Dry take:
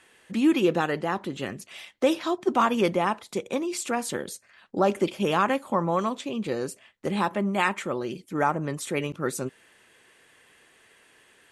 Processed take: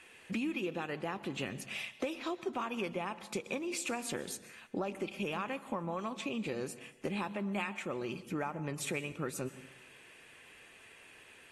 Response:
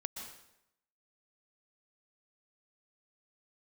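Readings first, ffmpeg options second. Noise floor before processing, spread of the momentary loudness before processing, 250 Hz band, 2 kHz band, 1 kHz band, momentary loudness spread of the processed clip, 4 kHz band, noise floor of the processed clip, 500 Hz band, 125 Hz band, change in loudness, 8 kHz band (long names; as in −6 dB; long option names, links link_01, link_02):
−59 dBFS, 11 LU, −11.5 dB, −8.5 dB, −14.0 dB, 18 LU, −8.0 dB, −58 dBFS, −12.0 dB, −9.5 dB, −11.5 dB, −6.5 dB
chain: -filter_complex "[0:a]equalizer=frequency=2500:width_type=o:width=0.29:gain=10.5,acompressor=threshold=-32dB:ratio=8,asplit=2[link_01][link_02];[1:a]atrim=start_sample=2205,lowshelf=frequency=150:gain=10[link_03];[link_02][link_03]afir=irnorm=-1:irlink=0,volume=-8.5dB[link_04];[link_01][link_04]amix=inputs=2:normalize=0,volume=-4dB" -ar 44100 -c:a aac -b:a 48k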